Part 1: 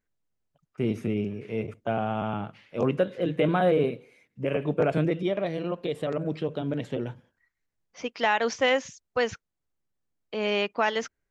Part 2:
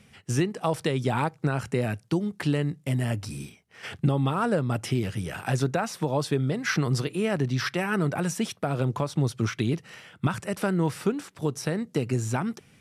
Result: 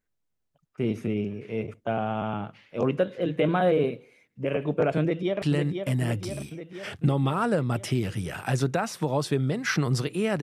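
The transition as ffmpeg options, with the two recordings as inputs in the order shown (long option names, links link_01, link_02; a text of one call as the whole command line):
ffmpeg -i cue0.wav -i cue1.wav -filter_complex "[0:a]apad=whole_dur=10.42,atrim=end=10.42,atrim=end=5.422[link_01];[1:a]atrim=start=2.418:end=7.42[link_02];[link_01][link_02]acrossfade=duration=0.004:curve1=hsin:curve2=hsin,asplit=2[link_03][link_04];[link_04]afade=type=in:start_time=5.01:duration=0.01,afade=type=out:start_time=5.42:duration=0.01,aecho=0:1:500|1000|1500|2000|2500|3000|3500|4000|4500|5000:0.530884|0.345075|0.224299|0.145794|0.0947662|0.061598|0.0400387|0.0260252|0.0169164|0.0109956[link_05];[link_03][link_05]amix=inputs=2:normalize=0" out.wav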